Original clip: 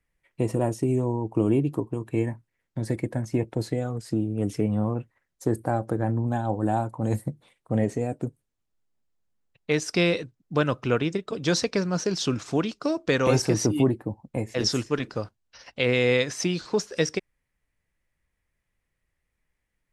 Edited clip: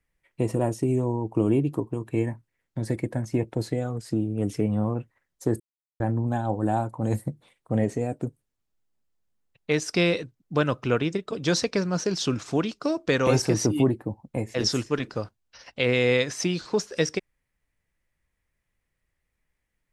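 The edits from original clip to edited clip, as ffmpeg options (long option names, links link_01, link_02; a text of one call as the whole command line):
ffmpeg -i in.wav -filter_complex "[0:a]asplit=3[link_01][link_02][link_03];[link_01]atrim=end=5.6,asetpts=PTS-STARTPTS,afade=type=out:start_time=5.596:duration=0.004:curve=hsin[link_04];[link_02]atrim=start=5.6:end=6,asetpts=PTS-STARTPTS,volume=0[link_05];[link_03]atrim=start=6,asetpts=PTS-STARTPTS,afade=type=in:duration=0.004:curve=hsin[link_06];[link_04][link_05][link_06]concat=n=3:v=0:a=1" out.wav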